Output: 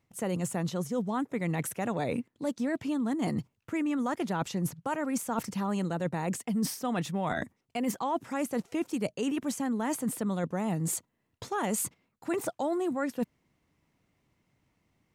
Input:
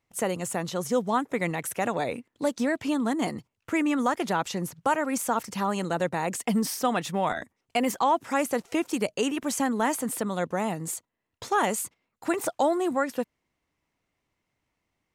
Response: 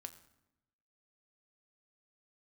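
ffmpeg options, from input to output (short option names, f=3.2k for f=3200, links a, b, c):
-af "equalizer=f=150:t=o:w=2.3:g=9,areverse,acompressor=threshold=-31dB:ratio=6,areverse,volume=2.5dB"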